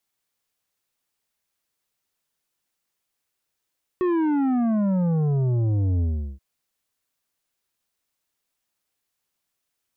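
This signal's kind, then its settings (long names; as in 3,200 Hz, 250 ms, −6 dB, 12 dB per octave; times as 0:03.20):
bass drop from 370 Hz, over 2.38 s, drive 9 dB, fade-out 0.38 s, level −20 dB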